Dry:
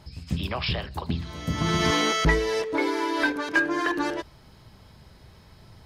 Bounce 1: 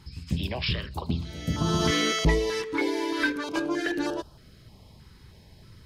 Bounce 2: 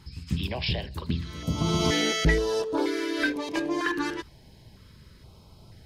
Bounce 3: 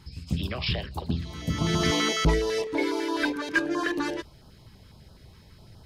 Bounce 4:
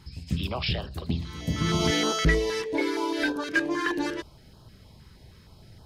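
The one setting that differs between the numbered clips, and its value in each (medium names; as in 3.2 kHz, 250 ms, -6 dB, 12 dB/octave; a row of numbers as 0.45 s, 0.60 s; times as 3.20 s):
step-sequenced notch, rate: 3.2 Hz, 2.1 Hz, 12 Hz, 6.4 Hz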